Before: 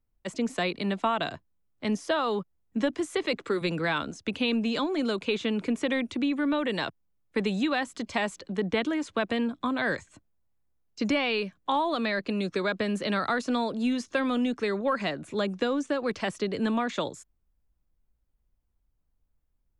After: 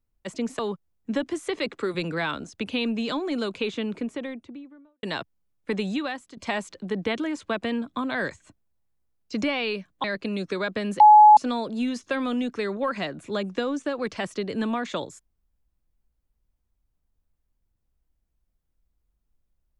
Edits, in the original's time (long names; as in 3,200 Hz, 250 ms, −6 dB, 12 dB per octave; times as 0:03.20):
0:00.59–0:02.26: remove
0:05.21–0:06.70: fade out and dull
0:07.56–0:08.04: fade out, to −13.5 dB
0:11.71–0:12.08: remove
0:13.04–0:13.41: beep over 847 Hz −8 dBFS